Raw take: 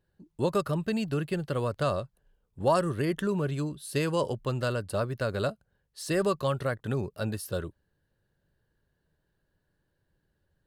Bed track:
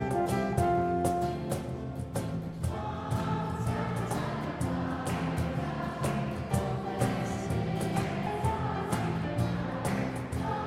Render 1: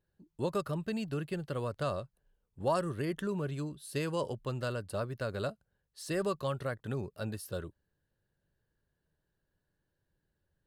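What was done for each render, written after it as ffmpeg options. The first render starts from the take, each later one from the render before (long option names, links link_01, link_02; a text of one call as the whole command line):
ffmpeg -i in.wav -af "volume=-6dB" out.wav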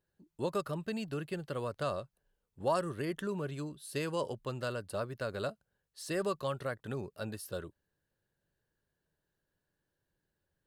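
ffmpeg -i in.wav -af "lowshelf=frequency=160:gain=-7" out.wav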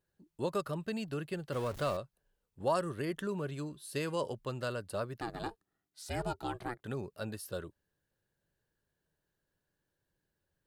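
ffmpeg -i in.wav -filter_complex "[0:a]asettb=1/sr,asplit=3[link_01][link_02][link_03];[link_01]atrim=end=1.524[link_04];[link_02]atrim=start=1.52:end=1.97,asetpts=PTS-STARTPTS,afade=type=in:duration=0.004:curve=qsin,afade=type=out:start_time=0.446:duration=0.004:curve=qsin,aeval=exprs='val(0)+0.5*0.00944*sgn(val(0))':channel_layout=same[link_05];[link_03]atrim=start=1.966[link_06];[link_04][link_05]acrossfade=duration=0.004:curve1=hsin:curve2=qsin[link_07];[link_07][link_06]acrossfade=duration=0.004:curve1=qsin:curve2=hsin,asettb=1/sr,asplit=3[link_08][link_09][link_10];[link_08]atrim=end=3.584[link_11];[link_09]atrim=start=3.58:end=4.15,asetpts=PTS-STARTPTS,afade=type=in:duration=0.004:curve=qsin,afade=type=out:start_time=0.566:duration=0.004:curve=qsin,bandreject=frequency=347.8:width_type=h:width=4,bandreject=frequency=695.6:width_type=h:width=4,bandreject=frequency=1043.4:width_type=h:width=4,bandreject=frequency=1391.2:width_type=h:width=4,bandreject=frequency=1739:width_type=h:width=4,bandreject=frequency=2086.8:width_type=h:width=4,bandreject=frequency=2434.6:width_type=h:width=4,bandreject=frequency=2782.4:width_type=h:width=4,bandreject=frequency=3130.2:width_type=h:width=4,bandreject=frequency=3478:width_type=h:width=4,bandreject=frequency=3825.8:width_type=h:width=4,bandreject=frequency=4173.6:width_type=h:width=4,bandreject=frequency=4521.4:width_type=h:width=4,bandreject=frequency=4869.2:width_type=h:width=4,bandreject=frequency=5217:width_type=h:width=4,bandreject=frequency=5564.8:width_type=h:width=4,bandreject=frequency=5912.6:width_type=h:width=4,bandreject=frequency=6260.4:width_type=h:width=4,bandreject=frequency=6608.2:width_type=h:width=4,bandreject=frequency=6956:width_type=h:width=4,bandreject=frequency=7303.8:width_type=h:width=4,bandreject=frequency=7651.6:width_type=h:width=4,bandreject=frequency=7999.4:width_type=h:width=4,bandreject=frequency=8347.2:width_type=h:width=4,bandreject=frequency=8695:width_type=h:width=4,bandreject=frequency=9042.8:width_type=h:width=4,bandreject=frequency=9390.6:width_type=h:width=4,bandreject=frequency=9738.4:width_type=h:width=4,bandreject=frequency=10086.2:width_type=h:width=4,bandreject=frequency=10434:width_type=h:width=4,bandreject=frequency=10781.8:width_type=h:width=4,bandreject=frequency=11129.6:width_type=h:width=4,bandreject=frequency=11477.4:width_type=h:width=4,bandreject=frequency=11825.2:width_type=h:width=4,bandreject=frequency=12173:width_type=h:width=4[link_12];[link_10]atrim=start=4.146[link_13];[link_11][link_12]acrossfade=duration=0.004:curve1=hsin:curve2=qsin[link_14];[link_14][link_13]acrossfade=duration=0.004:curve1=qsin:curve2=hsin,asettb=1/sr,asplit=3[link_15][link_16][link_17];[link_15]atrim=end=5.204[link_18];[link_16]atrim=start=5.2:end=6.84,asetpts=PTS-STARTPTS,afade=type=in:duration=0.004:curve=qsin,afade=type=out:start_time=1.636:duration=0.004:curve=qsin,aeval=exprs='val(0)*sin(2*PI*240*n/s)':channel_layout=same[link_19];[link_17]atrim=start=6.836[link_20];[link_18][link_19]acrossfade=duration=0.004:curve1=hsin:curve2=qsin[link_21];[link_21][link_20]acrossfade=duration=0.004:curve1=qsin:curve2=hsin" out.wav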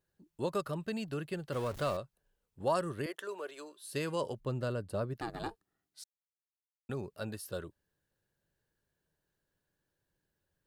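ffmpeg -i in.wav -filter_complex "[0:a]asettb=1/sr,asplit=3[link_01][link_02][link_03];[link_01]atrim=end=3.064[link_04];[link_02]atrim=start=3.06:end=3.84,asetpts=PTS-STARTPTS,afade=type=in:duration=0.004:curve=qsin,afade=type=out:start_time=0.776:duration=0.004:curve=qsin,highpass=frequency=410:width=0.5412,highpass=frequency=410:width=1.3066[link_05];[link_03]atrim=start=3.836[link_06];[link_04][link_05]acrossfade=duration=0.004:curve1=hsin:curve2=qsin[link_07];[link_07][link_06]acrossfade=duration=0.004:curve1=qsin:curve2=hsin,asettb=1/sr,asplit=3[link_08][link_09][link_10];[link_08]atrim=end=4.404[link_11];[link_09]atrim=start=4.4:end=5.14,asetpts=PTS-STARTPTS,afade=type=in:duration=0.004:curve=qsin,afade=type=out:start_time=0.736:duration=0.004:curve=qsin,tiltshelf=frequency=680:gain=5.5[link_12];[link_10]atrim=start=5.136[link_13];[link_11][link_12]acrossfade=duration=0.004:curve1=hsin:curve2=qsin[link_14];[link_14][link_13]acrossfade=duration=0.004:curve1=qsin:curve2=hsin,asplit=3[link_15][link_16][link_17];[link_15]atrim=end=6.04,asetpts=PTS-STARTPTS,afade=type=out:start_time=6.036:duration=0.004:curve=hsin[link_18];[link_16]atrim=start=6.04:end=6.89,asetpts=PTS-STARTPTS,volume=0[link_19];[link_17]atrim=start=6.89,asetpts=PTS-STARTPTS,afade=type=in:duration=0.004:curve=hsin[link_20];[link_18][link_19][link_20]concat=n=3:v=0:a=1" out.wav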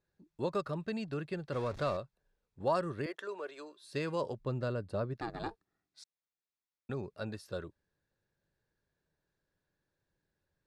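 ffmpeg -i in.wav -af "lowpass=5300,bandreject=frequency=3000:width=8.4" out.wav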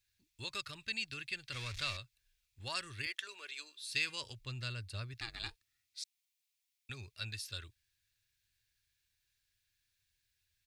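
ffmpeg -i in.wav -af "firequalizer=gain_entry='entry(110,0);entry(160,-20);entry(250,-15);entry(510,-21);entry(2300,11)':delay=0.05:min_phase=1" out.wav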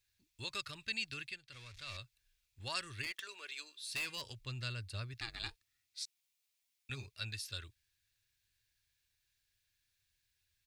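ffmpeg -i in.wav -filter_complex "[0:a]asettb=1/sr,asplit=3[link_01][link_02][link_03];[link_01]atrim=end=3.024[link_04];[link_02]atrim=start=3.02:end=4.33,asetpts=PTS-STARTPTS,afade=type=in:duration=0.004:curve=qsin,afade=type=out:start_time=1.306:duration=0.004:curve=qsin,asoftclip=type=hard:threshold=-35dB[link_05];[link_03]atrim=start=4.326[link_06];[link_04][link_05]acrossfade=duration=0.004:curve1=hsin:curve2=qsin[link_07];[link_07][link_06]acrossfade=duration=0.004:curve1=qsin:curve2=hsin,asettb=1/sr,asplit=3[link_08][link_09][link_10];[link_08]atrim=end=5.994[link_11];[link_09]atrim=start=5.99:end=7.06,asetpts=PTS-STARTPTS,afade=type=in:duration=0.004:curve=qsin,afade=type=out:start_time=1.066:duration=0.004:curve=qsin,asplit=2[link_12][link_13];[link_13]adelay=15,volume=-3dB[link_14];[link_12][link_14]amix=inputs=2:normalize=0,atrim=end_sample=47187[link_15];[link_10]atrim=start=7.056[link_16];[link_11][link_15]acrossfade=duration=0.004:curve1=hsin:curve2=qsin[link_17];[link_17][link_16]acrossfade=duration=0.004:curve1=qsin:curve2=hsin,asplit=3[link_18][link_19][link_20];[link_18]atrim=end=1.39,asetpts=PTS-STARTPTS,afade=type=out:start_time=1.23:duration=0.16:silence=0.281838[link_21];[link_19]atrim=start=1.39:end=1.86,asetpts=PTS-STARTPTS,volume=-11dB[link_22];[link_20]atrim=start=1.86,asetpts=PTS-STARTPTS,afade=type=in:duration=0.16:silence=0.281838[link_23];[link_21][link_22][link_23]concat=n=3:v=0:a=1" out.wav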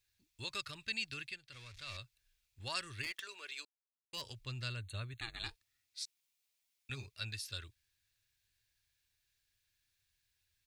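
ffmpeg -i in.wav -filter_complex "[0:a]asettb=1/sr,asplit=3[link_01][link_02][link_03];[link_01]atrim=end=4.764[link_04];[link_02]atrim=start=4.76:end=5.45,asetpts=PTS-STARTPTS,afade=type=in:duration=0.004:curve=qsin,afade=type=out:start_time=0.686:duration=0.004:curve=qsin,asuperstop=centerf=5200:order=20:qfactor=3[link_05];[link_03]atrim=start=5.446[link_06];[link_04][link_05]acrossfade=duration=0.004:curve1=hsin:curve2=qsin[link_07];[link_07][link_06]acrossfade=duration=0.004:curve1=qsin:curve2=hsin,asplit=3[link_08][link_09][link_10];[link_08]atrim=end=3.65,asetpts=PTS-STARTPTS,afade=type=out:start_time=3.646:duration=0.004:curve=hsin[link_11];[link_09]atrim=start=3.65:end=4.13,asetpts=PTS-STARTPTS,volume=0[link_12];[link_10]atrim=start=4.13,asetpts=PTS-STARTPTS,afade=type=in:duration=0.004:curve=hsin[link_13];[link_11][link_12][link_13]concat=n=3:v=0:a=1" out.wav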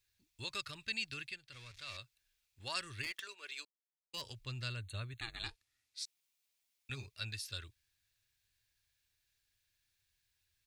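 ffmpeg -i in.wav -filter_complex "[0:a]asettb=1/sr,asplit=3[link_01][link_02][link_03];[link_01]atrim=end=1.714[link_04];[link_02]atrim=start=1.71:end=2.76,asetpts=PTS-STARTPTS,afade=type=in:duration=0.004:curve=qsin,afade=type=out:start_time=1.046:duration=0.004:curve=qsin,lowshelf=frequency=130:gain=-8.5[link_05];[link_03]atrim=start=2.756[link_06];[link_04][link_05]acrossfade=duration=0.004:curve1=hsin:curve2=qsin[link_07];[link_07][link_06]acrossfade=duration=0.004:curve1=qsin:curve2=hsin,asplit=3[link_08][link_09][link_10];[link_08]afade=type=out:start_time=3.27:duration=0.02[link_11];[link_09]agate=range=-33dB:threshold=-50dB:ratio=3:release=100:detection=peak,afade=type=in:start_time=3.27:duration=0.02,afade=type=out:start_time=4.15:duration=0.02[link_12];[link_10]afade=type=in:start_time=4.15:duration=0.02[link_13];[link_11][link_12][link_13]amix=inputs=3:normalize=0,asettb=1/sr,asplit=3[link_14][link_15][link_16];[link_14]atrim=end=5.424[link_17];[link_15]atrim=start=5.42:end=6.03,asetpts=PTS-STARTPTS,afade=type=in:duration=0.004:curve=qsin,afade=type=out:start_time=0.606:duration=0.004:curve=qsin,lowpass=12000[link_18];[link_16]atrim=start=6.026[link_19];[link_17][link_18]acrossfade=duration=0.004:curve1=hsin:curve2=qsin[link_20];[link_20][link_19]acrossfade=duration=0.004:curve1=qsin:curve2=hsin" out.wav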